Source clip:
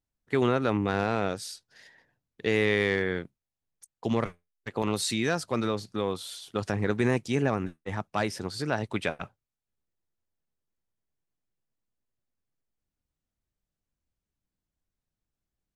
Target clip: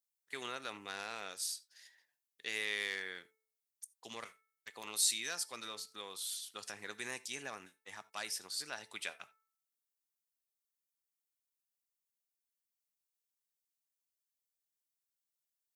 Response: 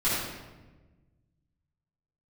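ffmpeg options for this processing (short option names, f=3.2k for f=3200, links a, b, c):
-filter_complex "[0:a]aderivative,bandreject=f=439.1:t=h:w=4,bandreject=f=878.2:t=h:w=4,bandreject=f=1.3173k:t=h:w=4,bandreject=f=1.7564k:t=h:w=4,bandreject=f=2.1955k:t=h:w=4,asplit=2[a][b];[1:a]atrim=start_sample=2205,afade=t=out:st=0.14:d=0.01,atrim=end_sample=6615,lowshelf=f=360:g=-11.5[c];[b][c]afir=irnorm=-1:irlink=0,volume=-25dB[d];[a][d]amix=inputs=2:normalize=0,volume=1.5dB"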